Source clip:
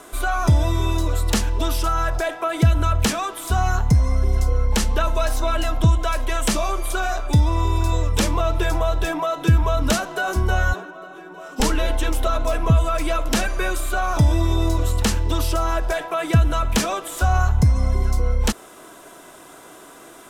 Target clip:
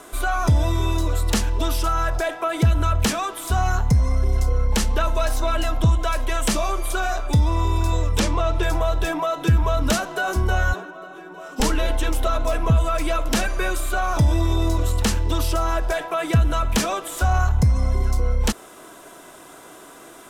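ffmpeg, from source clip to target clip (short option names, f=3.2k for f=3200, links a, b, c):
-filter_complex "[0:a]asettb=1/sr,asplit=3[a][b][c];[a]atrim=end=8.204[d];[b]atrim=start=8.2:end=8.63,asetpts=PTS-STARTPTS,afade=t=in:d=0.004:c=qsin,afade=t=out:st=0.426:d=0.004:c=qsin,lowpass=8.2k[e];[c]atrim=start=8.626[f];[d][e]acrossfade=d=0.004:c1=hsin:c2=qsin[g];[g][f]acrossfade=d=0.004:c1=qsin:c2=hsin,asoftclip=type=tanh:threshold=-8dB"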